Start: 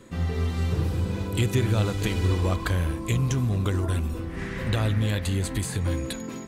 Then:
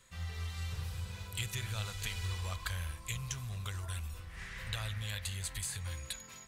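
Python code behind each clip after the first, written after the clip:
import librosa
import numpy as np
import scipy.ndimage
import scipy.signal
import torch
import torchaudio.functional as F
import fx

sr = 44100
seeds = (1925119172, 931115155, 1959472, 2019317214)

y = fx.tone_stack(x, sr, knobs='10-0-10')
y = y * 10.0 ** (-3.5 / 20.0)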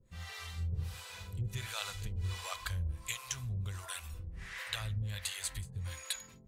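y = fx.harmonic_tremolo(x, sr, hz=1.4, depth_pct=100, crossover_hz=490.0)
y = y * 10.0 ** (4.5 / 20.0)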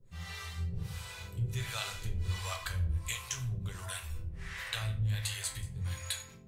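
y = fx.room_shoebox(x, sr, seeds[0], volume_m3=41.0, walls='mixed', distance_m=0.44)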